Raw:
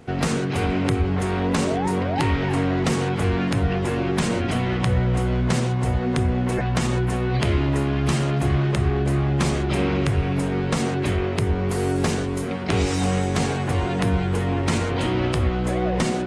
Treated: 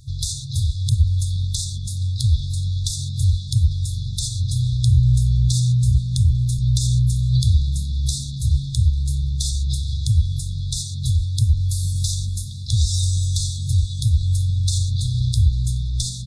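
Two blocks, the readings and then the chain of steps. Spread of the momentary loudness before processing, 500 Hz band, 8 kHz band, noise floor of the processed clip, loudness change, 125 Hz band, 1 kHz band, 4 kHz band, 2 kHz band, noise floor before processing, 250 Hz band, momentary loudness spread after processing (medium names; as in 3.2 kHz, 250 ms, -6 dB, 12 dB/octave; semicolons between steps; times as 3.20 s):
2 LU, under -40 dB, +7.0 dB, -29 dBFS, +1.5 dB, +5.0 dB, under -40 dB, +4.0 dB, under -40 dB, -25 dBFS, -12.0 dB, 7 LU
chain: FFT band-reject 130–3400 Hz; frequency-shifting echo 423 ms, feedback 39%, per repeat +49 Hz, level -23 dB; trim +7 dB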